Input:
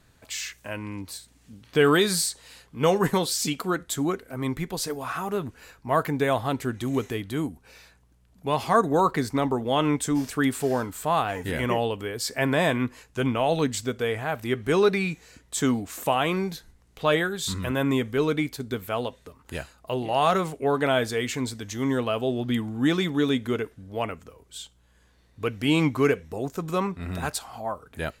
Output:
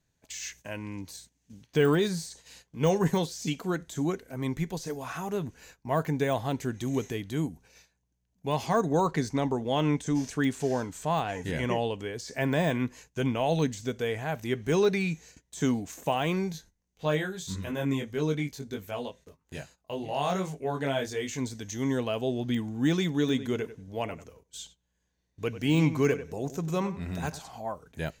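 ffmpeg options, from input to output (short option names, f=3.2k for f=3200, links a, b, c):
-filter_complex "[0:a]asettb=1/sr,asplit=3[a][b][c];[a]atrim=end=8.664[d];[b]atrim=start=8.66:end=12.34,asetpts=PTS-STARTPTS,afade=t=in:d=0.004:c=qsin,afade=t=out:st=3.676:d=0.004:c=qsin,lowpass=9.8k[e];[c]atrim=start=12.336[f];[d][e]acrossfade=d=0.004:c1=hsin:c2=qsin[g];[g][f]acrossfade=d=0.004:c1=qsin:c2=hsin,asettb=1/sr,asplit=3[h][i][j];[h]atrim=end=16.524[k];[i]atrim=start=16.52:end=21.38,asetpts=PTS-STARTPTS,afade=t=in:d=0.004:c=qsin,afade=t=out:st=4.856:d=0.004:c=qsin,flanger=delay=19.5:depth=2.4:speed=1.7[l];[j]atrim=start=21.376[m];[k][l]acrossfade=d=0.004:c1=hsin:c2=qsin[n];[n][m]acrossfade=d=0.004:c1=qsin:c2=hsin,asettb=1/sr,asplit=3[o][p][q];[o]atrim=end=23.154[r];[p]atrim=start=23.15:end=27.52,asetpts=PTS-STARTPTS,afade=t=in:d=0.004:c=qsin,afade=t=out:st=4.366:d=0.004:c=qsin,asplit=2[s][t];[t]adelay=95,lowpass=f=2.9k:p=1,volume=-13dB,asplit=2[u][v];[v]adelay=95,lowpass=f=2.9k:p=1,volume=0.18[w];[s][u][w]amix=inputs=3:normalize=0,atrim=end_sample=192717[x];[q]atrim=start=27.516[y];[r][x]acrossfade=d=0.004:c1=hsin:c2=qsin[z];[z][y]acrossfade=d=0.004:c1=qsin:c2=hsin,deesser=0.8,agate=range=-14dB:threshold=-49dB:ratio=16:detection=peak,equalizer=f=160:t=o:w=0.33:g=6,equalizer=f=1.25k:t=o:w=0.33:g=-8,equalizer=f=6.3k:t=o:w=0.33:g=10,equalizer=f=10k:t=o:w=0.33:g=-4,volume=-3.5dB"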